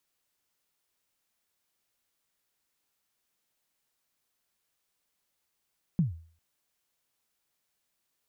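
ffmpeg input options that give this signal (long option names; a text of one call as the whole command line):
ffmpeg -f lavfi -i "aevalsrc='0.119*pow(10,-3*t/0.45)*sin(2*PI*(190*0.136/log(82/190)*(exp(log(82/190)*min(t,0.136)/0.136)-1)+82*max(t-0.136,0)))':duration=0.4:sample_rate=44100" out.wav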